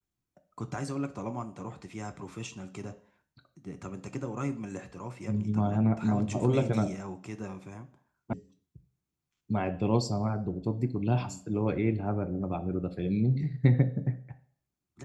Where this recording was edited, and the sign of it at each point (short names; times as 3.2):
8.33 sound cut off